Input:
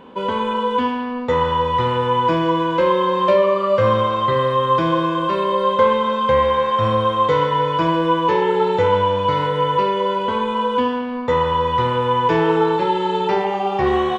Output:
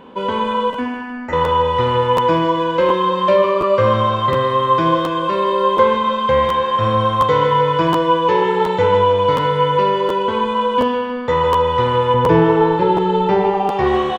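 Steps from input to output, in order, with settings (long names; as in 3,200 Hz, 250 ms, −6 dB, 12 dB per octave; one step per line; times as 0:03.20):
0:00.70–0:01.33: phaser with its sweep stopped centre 720 Hz, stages 8
0:12.14–0:13.69: spectral tilt −2.5 dB per octave
repeating echo 156 ms, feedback 41%, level −9 dB
regular buffer underruns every 0.72 s, samples 512, repeat, from 0:00.72
level +1.5 dB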